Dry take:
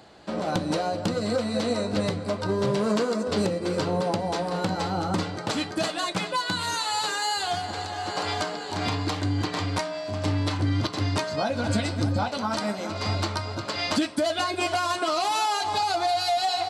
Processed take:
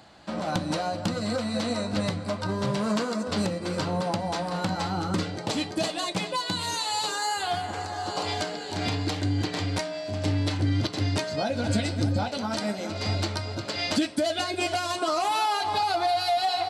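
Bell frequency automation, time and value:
bell -8.5 dB 0.63 oct
4.83 s 420 Hz
5.46 s 1400 Hz
7.02 s 1400 Hz
7.5 s 6900 Hz
8.42 s 1100 Hz
14.88 s 1100 Hz
15.36 s 6900 Hz

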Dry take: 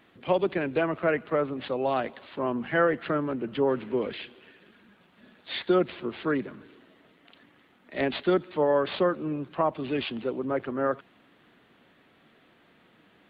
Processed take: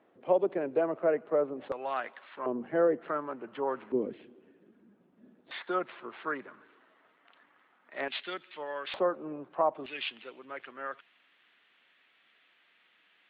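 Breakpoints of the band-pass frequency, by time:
band-pass, Q 1.3
550 Hz
from 1.72 s 1500 Hz
from 2.46 s 440 Hz
from 3.08 s 1000 Hz
from 3.92 s 290 Hz
from 5.51 s 1200 Hz
from 8.08 s 2700 Hz
from 8.94 s 750 Hz
from 9.86 s 2600 Hz

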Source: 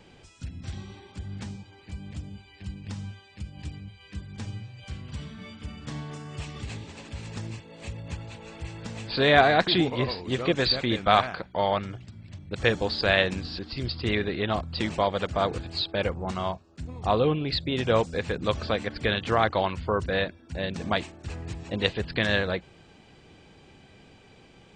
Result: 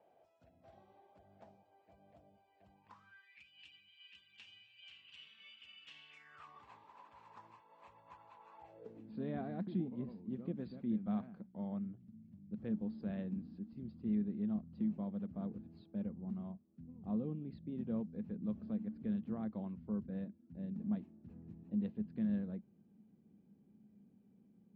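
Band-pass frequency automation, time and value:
band-pass, Q 7.9
2.66 s 660 Hz
3.49 s 2800 Hz
6.09 s 2800 Hz
6.51 s 1000 Hz
8.55 s 1000 Hz
9.13 s 210 Hz

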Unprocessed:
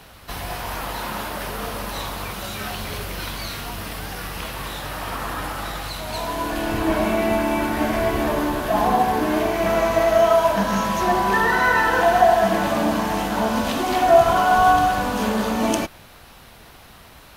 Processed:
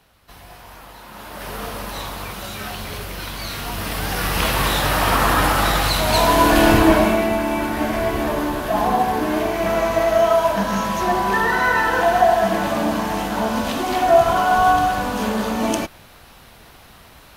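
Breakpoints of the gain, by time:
1.06 s -12 dB
1.53 s -0.5 dB
3.29 s -0.5 dB
4.48 s +11.5 dB
6.68 s +11.5 dB
7.32 s 0 dB

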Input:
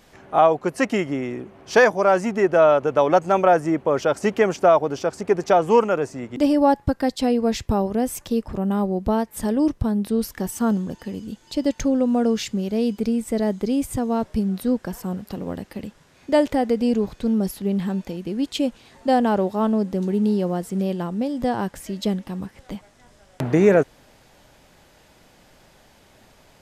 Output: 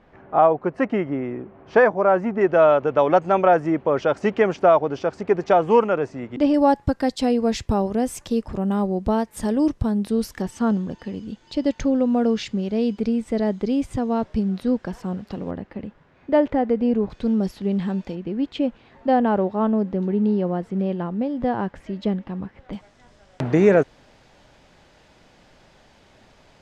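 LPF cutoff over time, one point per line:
1700 Hz
from 2.41 s 3500 Hz
from 6.54 s 9100 Hz
from 10.42 s 4500 Hz
from 15.51 s 2000 Hz
from 17.1 s 4800 Hz
from 18.15 s 2400 Hz
from 22.73 s 5800 Hz

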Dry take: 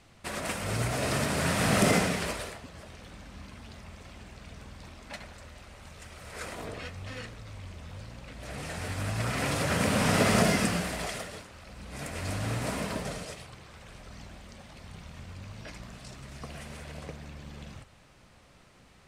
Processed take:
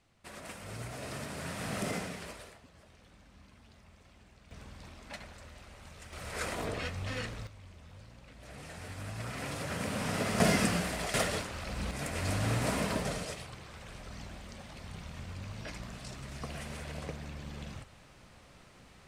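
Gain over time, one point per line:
-12 dB
from 4.51 s -3 dB
from 6.13 s +3 dB
from 7.47 s -9 dB
from 10.4 s -1.5 dB
from 11.14 s +8.5 dB
from 11.91 s +1 dB

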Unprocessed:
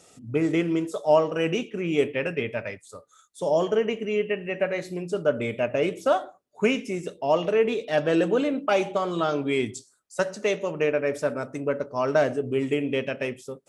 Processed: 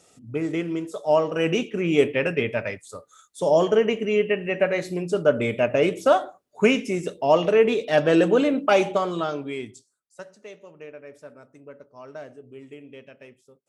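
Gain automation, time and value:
0.87 s -3 dB
1.64 s +4 dB
8.91 s +4 dB
9.55 s -7 dB
10.4 s -17.5 dB

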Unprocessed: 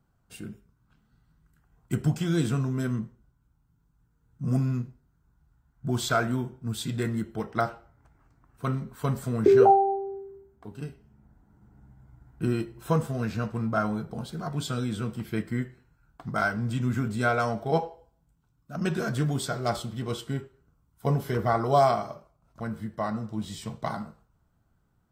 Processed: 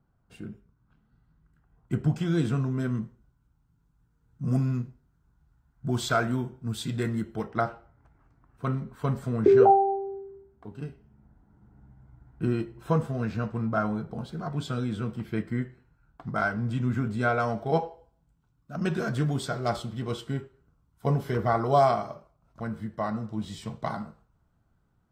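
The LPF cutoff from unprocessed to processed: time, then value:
LPF 6 dB/oct
1700 Hz
from 2.1 s 3000 Hz
from 2.95 s 7200 Hz
from 7.48 s 2700 Hz
from 17.49 s 4800 Hz

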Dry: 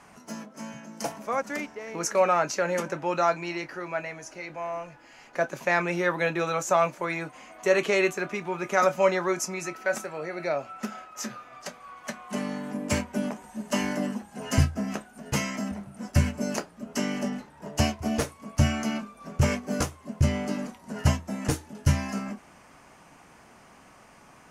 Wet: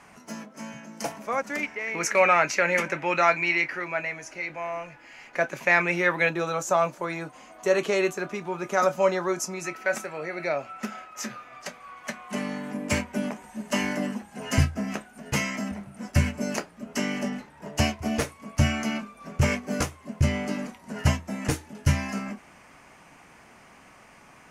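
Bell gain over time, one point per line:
bell 2200 Hz 0.8 oct
+4 dB
from 1.63 s +15 dB
from 3.84 s +8 dB
from 6.29 s -4 dB
from 9.64 s +5 dB

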